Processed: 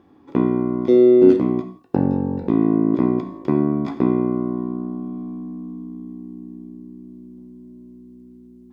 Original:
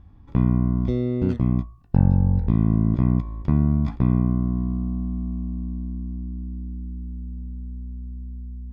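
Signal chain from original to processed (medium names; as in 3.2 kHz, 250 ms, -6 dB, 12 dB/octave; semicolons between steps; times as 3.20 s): resonant high-pass 340 Hz, resonance Q 3.4; gated-style reverb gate 200 ms falling, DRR 7 dB; trim +5 dB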